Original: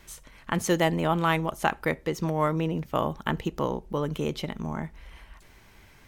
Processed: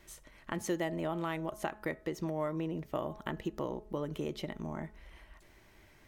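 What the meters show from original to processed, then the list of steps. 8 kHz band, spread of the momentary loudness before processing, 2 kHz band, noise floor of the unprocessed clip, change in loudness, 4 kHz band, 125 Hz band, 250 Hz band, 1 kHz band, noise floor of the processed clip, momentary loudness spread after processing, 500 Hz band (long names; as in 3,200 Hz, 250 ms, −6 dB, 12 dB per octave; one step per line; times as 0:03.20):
−9.5 dB, 10 LU, −11.5 dB, −54 dBFS, −9.5 dB, −12.0 dB, −11.5 dB, −8.0 dB, −12.5 dB, −61 dBFS, 12 LU, −8.5 dB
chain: hum removal 213.1 Hz, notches 8
downward compressor 3 to 1, threshold −28 dBFS, peak gain reduction 8 dB
hollow resonant body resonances 340/610/1,900 Hz, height 7 dB, ringing for 30 ms
level −7.5 dB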